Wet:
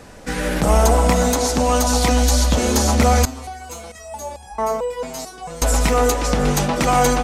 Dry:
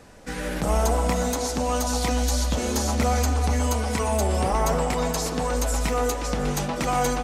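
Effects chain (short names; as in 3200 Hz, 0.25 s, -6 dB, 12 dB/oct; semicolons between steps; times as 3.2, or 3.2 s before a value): 3.25–5.62 stepped resonator 4.5 Hz 130–830 Hz; gain +7.5 dB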